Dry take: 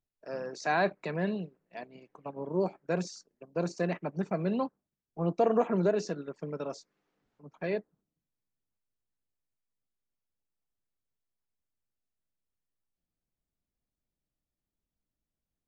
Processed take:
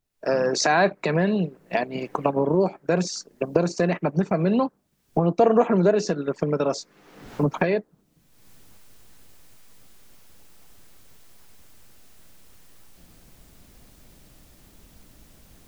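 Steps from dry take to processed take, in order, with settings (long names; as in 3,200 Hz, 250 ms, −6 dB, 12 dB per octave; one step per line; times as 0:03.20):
camcorder AGC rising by 40 dB per second
level +8 dB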